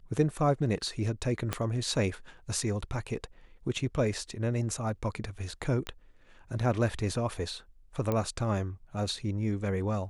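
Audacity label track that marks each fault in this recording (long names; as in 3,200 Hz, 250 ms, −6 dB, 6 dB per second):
1.530000	1.530000	click −14 dBFS
5.870000	5.870000	click −21 dBFS
8.120000	8.120000	click −17 dBFS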